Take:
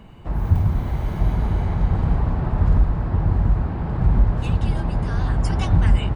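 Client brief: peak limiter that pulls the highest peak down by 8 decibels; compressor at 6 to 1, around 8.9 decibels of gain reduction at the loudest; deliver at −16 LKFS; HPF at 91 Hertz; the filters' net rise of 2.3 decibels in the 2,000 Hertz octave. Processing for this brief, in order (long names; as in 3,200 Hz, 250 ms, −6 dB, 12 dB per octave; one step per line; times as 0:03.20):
high-pass filter 91 Hz
parametric band 2,000 Hz +3 dB
downward compressor 6 to 1, threshold −24 dBFS
level +17 dB
brickwall limiter −7 dBFS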